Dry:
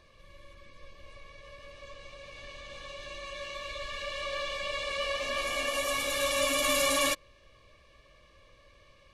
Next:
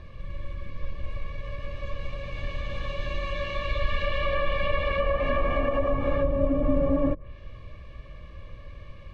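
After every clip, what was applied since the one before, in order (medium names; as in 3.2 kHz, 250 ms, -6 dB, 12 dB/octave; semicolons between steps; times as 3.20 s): low-pass that closes with the level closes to 490 Hz, closed at -25.5 dBFS; tone controls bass +13 dB, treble -14 dB; trim +8 dB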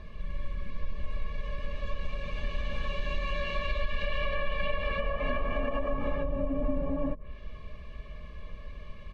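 compression, threshold -25 dBFS, peak gain reduction 8 dB; comb 4.7 ms, depth 59%; trim -1.5 dB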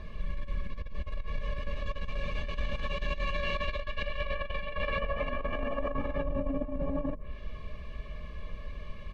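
compressor with a negative ratio -30 dBFS, ratio -0.5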